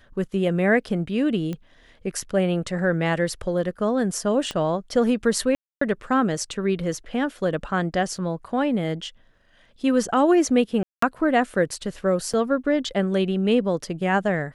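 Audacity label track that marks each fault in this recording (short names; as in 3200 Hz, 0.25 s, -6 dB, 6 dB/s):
1.530000	1.530000	pop -19 dBFS
4.510000	4.510000	pop -15 dBFS
5.550000	5.810000	gap 0.264 s
8.170000	8.170000	gap 2.7 ms
10.830000	11.020000	gap 0.194 s
12.330000	12.340000	gap 5.9 ms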